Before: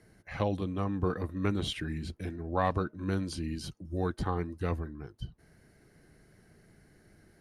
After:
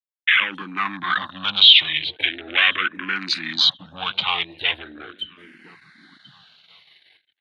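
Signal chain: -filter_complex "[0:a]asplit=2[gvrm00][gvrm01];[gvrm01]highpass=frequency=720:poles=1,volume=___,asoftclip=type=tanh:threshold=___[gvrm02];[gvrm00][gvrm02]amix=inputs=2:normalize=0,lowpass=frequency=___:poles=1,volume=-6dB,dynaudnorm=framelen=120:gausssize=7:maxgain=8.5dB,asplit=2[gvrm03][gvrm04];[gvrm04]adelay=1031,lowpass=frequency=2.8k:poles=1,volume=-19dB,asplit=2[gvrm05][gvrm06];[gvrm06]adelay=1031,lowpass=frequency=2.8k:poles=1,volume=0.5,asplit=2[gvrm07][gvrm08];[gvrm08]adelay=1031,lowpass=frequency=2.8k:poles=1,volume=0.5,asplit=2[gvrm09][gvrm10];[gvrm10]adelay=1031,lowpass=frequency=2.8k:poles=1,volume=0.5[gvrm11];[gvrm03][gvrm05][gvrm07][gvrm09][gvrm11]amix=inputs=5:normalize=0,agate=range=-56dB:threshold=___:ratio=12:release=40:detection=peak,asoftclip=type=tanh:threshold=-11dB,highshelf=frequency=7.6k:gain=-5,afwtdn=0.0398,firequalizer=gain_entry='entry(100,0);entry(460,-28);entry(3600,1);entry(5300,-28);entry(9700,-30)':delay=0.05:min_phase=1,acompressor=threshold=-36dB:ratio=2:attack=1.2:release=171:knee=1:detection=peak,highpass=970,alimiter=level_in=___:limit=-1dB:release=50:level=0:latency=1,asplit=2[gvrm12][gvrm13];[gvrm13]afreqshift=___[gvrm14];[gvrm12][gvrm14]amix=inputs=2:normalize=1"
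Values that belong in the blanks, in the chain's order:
23dB, -13.5dB, 6.5k, -44dB, 28dB, -0.4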